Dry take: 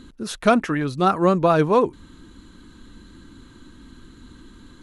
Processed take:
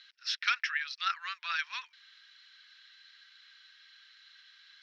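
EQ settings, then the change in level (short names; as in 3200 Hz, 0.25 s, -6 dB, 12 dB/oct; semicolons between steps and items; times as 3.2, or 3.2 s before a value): steep high-pass 1700 Hz 36 dB/oct; synth low-pass 5400 Hz, resonance Q 9.7; air absorption 340 m; +4.0 dB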